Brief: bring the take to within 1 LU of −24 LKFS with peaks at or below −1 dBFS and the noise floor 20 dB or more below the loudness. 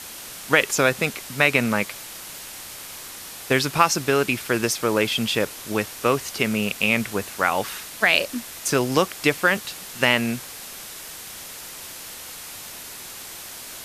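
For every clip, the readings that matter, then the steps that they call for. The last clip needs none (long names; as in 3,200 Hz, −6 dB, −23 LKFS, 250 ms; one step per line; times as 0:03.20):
background noise floor −38 dBFS; target noise floor −42 dBFS; integrated loudness −22.0 LKFS; sample peak −1.5 dBFS; target loudness −24.0 LKFS
→ noise reduction from a noise print 6 dB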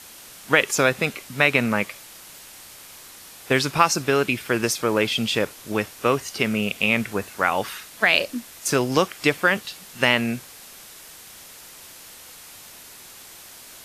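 background noise floor −44 dBFS; integrated loudness −22.0 LKFS; sample peak −1.5 dBFS; target loudness −24.0 LKFS
→ level −2 dB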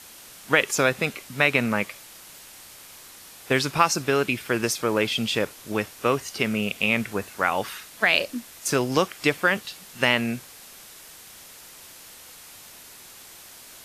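integrated loudness −24.0 LKFS; sample peak −3.5 dBFS; background noise floor −46 dBFS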